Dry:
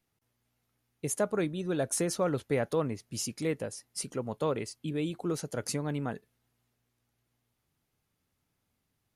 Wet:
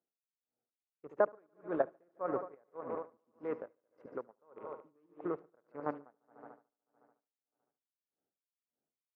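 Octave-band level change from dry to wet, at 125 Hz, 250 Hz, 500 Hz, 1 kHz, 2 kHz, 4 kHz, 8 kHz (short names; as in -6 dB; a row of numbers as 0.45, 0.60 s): -22.0 dB, -11.5 dB, -5.5 dB, -2.5 dB, -8.5 dB, under -35 dB, under -40 dB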